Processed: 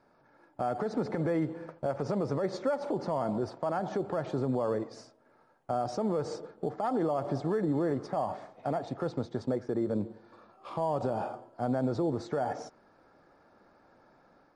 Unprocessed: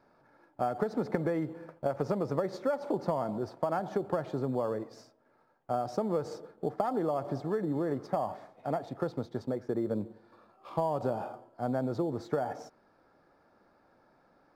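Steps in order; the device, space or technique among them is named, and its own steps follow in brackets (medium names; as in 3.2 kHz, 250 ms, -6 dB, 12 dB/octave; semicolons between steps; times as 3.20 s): low-bitrate web radio (level rider gain up to 4 dB; peak limiter -21 dBFS, peak gain reduction 11 dB; MP3 48 kbps 48 kHz)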